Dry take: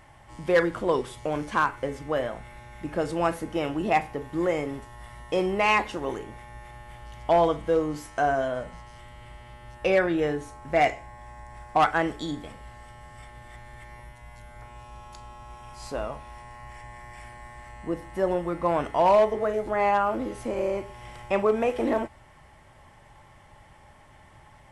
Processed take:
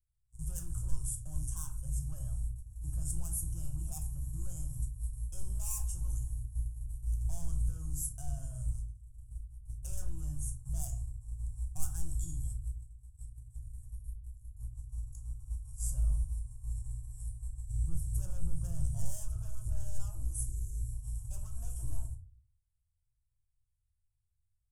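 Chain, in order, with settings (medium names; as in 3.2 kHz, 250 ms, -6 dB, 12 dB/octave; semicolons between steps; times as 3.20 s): 17.68–20.00 s: ten-band graphic EQ 125 Hz +9 dB, 500 Hz +11 dB, 1 kHz -9 dB, 2 kHz -3 dB, 4 kHz +8 dB; saturation -25.5 dBFS, distortion -6 dB; gate -42 dBFS, range -37 dB; inverse Chebyshev band-stop 200–4400 Hz, stop band 40 dB; reverberation RT60 0.40 s, pre-delay 6 ms, DRR 5.5 dB; 20.45–20.93 s: spectral selection erased 440–4800 Hz; trim +11.5 dB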